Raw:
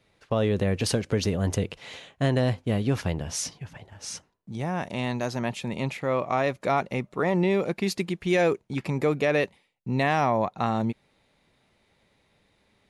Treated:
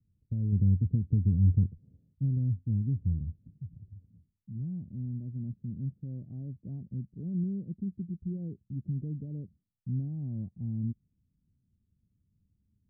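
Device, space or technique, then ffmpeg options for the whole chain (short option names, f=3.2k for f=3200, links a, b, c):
the neighbour's flat through the wall: -filter_complex "[0:a]asettb=1/sr,asplit=3[a][b][c];[a]atrim=end=0.524[d];[b]atrim=start=0.52:end=1.94,asetpts=PTS-STARTPTS,afade=t=in:d=0.004:c=qsin,afade=t=out:st=1.416:d=0.004:c=qsin,tiltshelf=f=1.2k:g=4[e];[c]atrim=start=1.936[f];[d][e]acrossfade=d=0.004:c1=hsin:c2=qsin[g];[g][f]acrossfade=d=0.004:c1=qsin:c2=hsin,lowpass=f=220:w=0.5412,lowpass=f=220:w=1.3066,equalizer=f=82:t=o:w=0.99:g=8,volume=-5dB"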